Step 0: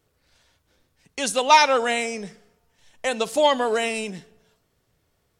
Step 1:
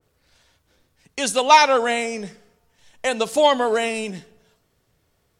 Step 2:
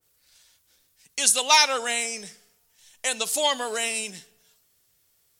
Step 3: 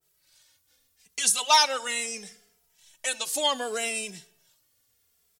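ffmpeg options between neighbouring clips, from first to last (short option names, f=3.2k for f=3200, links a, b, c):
-af "adynamicequalizer=threshold=0.0316:dfrequency=1800:dqfactor=0.7:tfrequency=1800:tqfactor=0.7:attack=5:release=100:ratio=0.375:range=2:mode=cutabove:tftype=highshelf,volume=2.5dB"
-af "crystalizer=i=9.5:c=0,volume=-13dB"
-filter_complex "[0:a]asplit=2[a][b];[b]adelay=2.6,afreqshift=-0.73[c];[a][c]amix=inputs=2:normalize=1"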